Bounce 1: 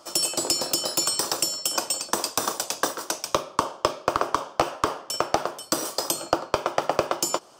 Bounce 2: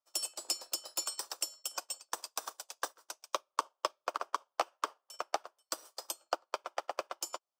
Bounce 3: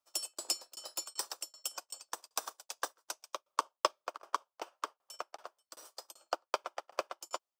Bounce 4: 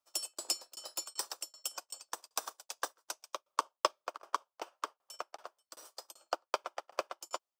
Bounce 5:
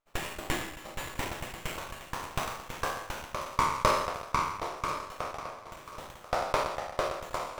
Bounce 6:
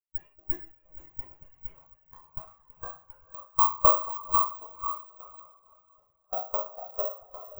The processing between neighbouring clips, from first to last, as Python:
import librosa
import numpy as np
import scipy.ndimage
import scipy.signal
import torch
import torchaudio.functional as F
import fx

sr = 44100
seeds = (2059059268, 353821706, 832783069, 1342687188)

y1 = scipy.signal.sosfilt(scipy.signal.butter(2, 610.0, 'highpass', fs=sr, output='sos'), x)
y1 = fx.upward_expand(y1, sr, threshold_db=-43.0, expansion=2.5)
y1 = y1 * 10.0 ** (-7.0 / 20.0)
y2 = fx.tremolo_shape(y1, sr, shape='saw_down', hz=2.6, depth_pct=100)
y2 = y2 * 10.0 ** (4.0 / 20.0)
y3 = y2
y4 = fx.spec_trails(y3, sr, decay_s=0.88)
y4 = fx.echo_feedback(y4, sr, ms=1039, feedback_pct=28, wet_db=-14.5)
y4 = fx.running_max(y4, sr, window=9)
y4 = y4 * 10.0 ** (2.0 / 20.0)
y5 = (np.kron(y4[::2], np.eye(2)[0]) * 2)[:len(y4)]
y5 = fx.echo_diffused(y5, sr, ms=496, feedback_pct=43, wet_db=-6)
y5 = fx.spectral_expand(y5, sr, expansion=2.5)